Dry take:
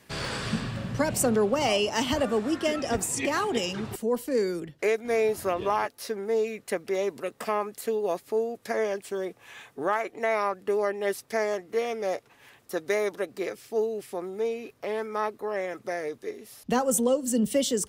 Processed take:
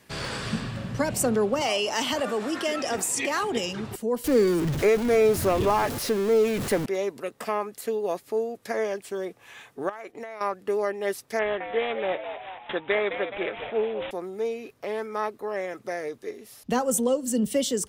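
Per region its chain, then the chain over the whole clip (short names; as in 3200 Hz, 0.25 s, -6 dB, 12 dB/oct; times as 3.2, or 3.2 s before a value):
1.61–3.43 HPF 470 Hz 6 dB/oct + fast leveller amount 50%
4.24–6.86 zero-crossing step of -29 dBFS + low shelf 270 Hz +11 dB
9.89–10.41 compressor 12:1, threshold -33 dBFS + expander -48 dBFS
11.39–14.11 high shelf 2300 Hz +10 dB + frequency-shifting echo 0.211 s, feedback 56%, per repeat +95 Hz, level -9 dB + careless resampling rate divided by 6×, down none, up filtered
whole clip: dry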